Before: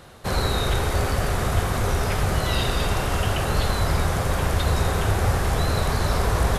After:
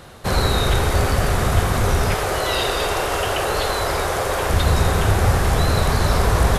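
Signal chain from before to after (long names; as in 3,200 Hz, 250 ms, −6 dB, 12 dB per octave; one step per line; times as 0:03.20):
0:02.14–0:04.50: low shelf with overshoot 290 Hz −10 dB, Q 1.5
level +4.5 dB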